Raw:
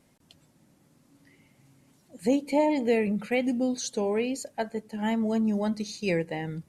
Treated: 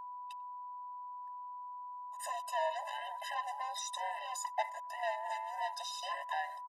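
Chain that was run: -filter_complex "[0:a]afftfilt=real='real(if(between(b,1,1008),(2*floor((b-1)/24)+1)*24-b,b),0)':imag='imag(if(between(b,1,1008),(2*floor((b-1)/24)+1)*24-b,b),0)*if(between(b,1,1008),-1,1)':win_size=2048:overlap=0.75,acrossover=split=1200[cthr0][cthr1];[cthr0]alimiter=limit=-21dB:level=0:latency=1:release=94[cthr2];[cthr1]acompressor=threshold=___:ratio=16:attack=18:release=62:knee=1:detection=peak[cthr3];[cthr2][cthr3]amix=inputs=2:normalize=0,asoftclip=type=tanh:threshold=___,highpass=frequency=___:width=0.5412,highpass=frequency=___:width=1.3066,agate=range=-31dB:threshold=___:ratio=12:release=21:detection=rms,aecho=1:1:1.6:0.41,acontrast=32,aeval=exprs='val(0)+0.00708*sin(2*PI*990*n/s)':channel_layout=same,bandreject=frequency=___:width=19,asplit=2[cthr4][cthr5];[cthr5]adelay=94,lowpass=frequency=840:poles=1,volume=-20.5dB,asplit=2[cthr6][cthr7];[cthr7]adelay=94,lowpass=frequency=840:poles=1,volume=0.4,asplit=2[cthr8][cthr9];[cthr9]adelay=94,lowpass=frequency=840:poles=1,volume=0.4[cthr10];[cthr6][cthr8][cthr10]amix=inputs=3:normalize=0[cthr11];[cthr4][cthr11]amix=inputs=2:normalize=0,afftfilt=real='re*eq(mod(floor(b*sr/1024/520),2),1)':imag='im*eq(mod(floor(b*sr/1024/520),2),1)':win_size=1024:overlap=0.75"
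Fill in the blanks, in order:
-45dB, -30.5dB, 620, 620, -57dB, 2200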